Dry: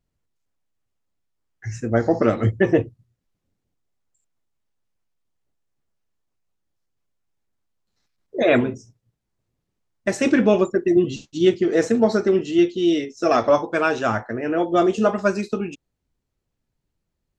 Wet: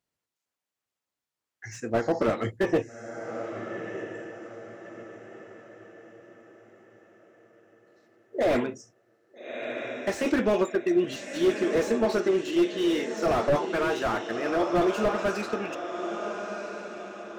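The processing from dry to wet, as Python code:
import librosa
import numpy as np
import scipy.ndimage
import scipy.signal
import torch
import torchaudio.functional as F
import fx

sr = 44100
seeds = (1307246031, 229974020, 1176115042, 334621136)

y = fx.highpass(x, sr, hz=640.0, slope=6)
y = fx.echo_diffused(y, sr, ms=1290, feedback_pct=40, wet_db=-10)
y = fx.slew_limit(y, sr, full_power_hz=62.0)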